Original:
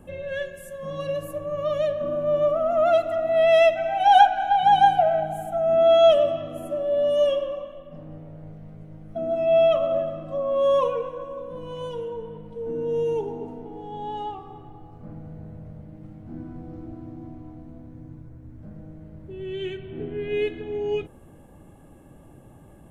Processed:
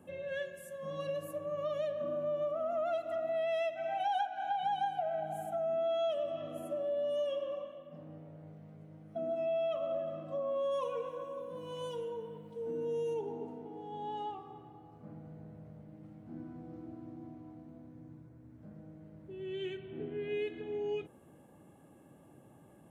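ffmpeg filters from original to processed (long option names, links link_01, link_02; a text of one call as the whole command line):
ffmpeg -i in.wav -filter_complex "[0:a]asplit=3[link_01][link_02][link_03];[link_01]afade=type=out:start_time=10.71:duration=0.02[link_04];[link_02]highshelf=frequency=4900:gain=11,afade=type=in:start_time=10.71:duration=0.02,afade=type=out:start_time=13.13:duration=0.02[link_05];[link_03]afade=type=in:start_time=13.13:duration=0.02[link_06];[link_04][link_05][link_06]amix=inputs=3:normalize=0,highpass=140,acompressor=threshold=-25dB:ratio=4,volume=-7.5dB" out.wav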